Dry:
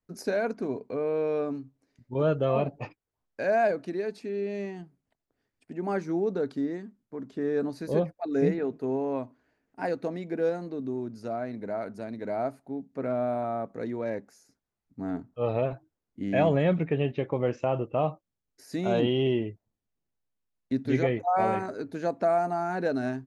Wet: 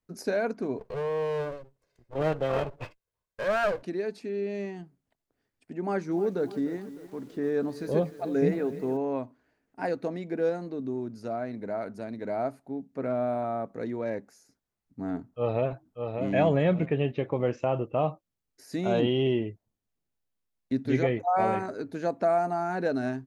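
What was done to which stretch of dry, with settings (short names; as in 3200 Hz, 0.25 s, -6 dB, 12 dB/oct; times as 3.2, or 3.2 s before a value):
0.79–3.83 minimum comb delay 1.9 ms
5.81–8.97 lo-fi delay 0.302 s, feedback 55%, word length 8-bit, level -14.5 dB
15.26–16.26 echo throw 0.59 s, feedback 25%, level -5.5 dB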